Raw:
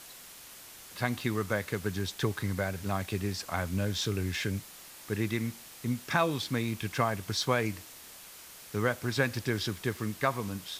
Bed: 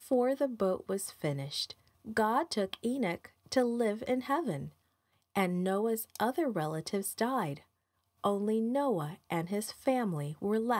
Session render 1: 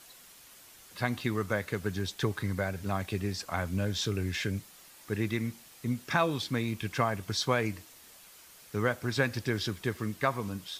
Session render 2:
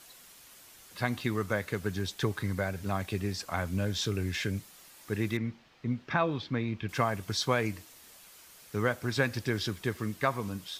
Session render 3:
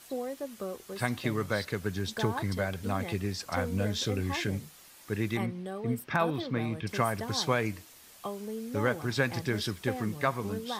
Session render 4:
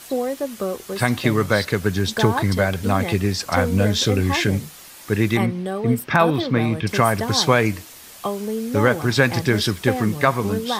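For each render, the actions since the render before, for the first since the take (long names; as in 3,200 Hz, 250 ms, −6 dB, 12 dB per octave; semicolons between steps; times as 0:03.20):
broadband denoise 6 dB, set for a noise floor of −50 dBFS
0:05.37–0:06.89: high-frequency loss of the air 230 metres
mix in bed −7 dB
level +12 dB; brickwall limiter −2 dBFS, peak gain reduction 2.5 dB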